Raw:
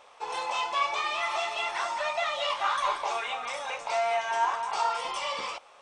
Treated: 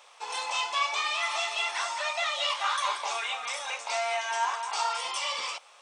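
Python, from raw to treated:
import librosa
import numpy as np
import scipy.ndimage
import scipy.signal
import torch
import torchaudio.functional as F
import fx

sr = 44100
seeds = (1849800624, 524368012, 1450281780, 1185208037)

y = fx.highpass(x, sr, hz=760.0, slope=6)
y = fx.high_shelf(y, sr, hz=3000.0, db=9.0)
y = F.gain(torch.from_numpy(y), -1.0).numpy()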